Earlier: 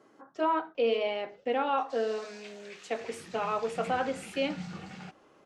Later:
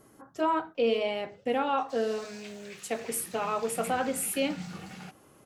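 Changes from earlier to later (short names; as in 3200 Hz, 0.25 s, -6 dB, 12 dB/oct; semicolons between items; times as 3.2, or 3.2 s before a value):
speech: remove BPF 280–5900 Hz; master: remove air absorption 62 m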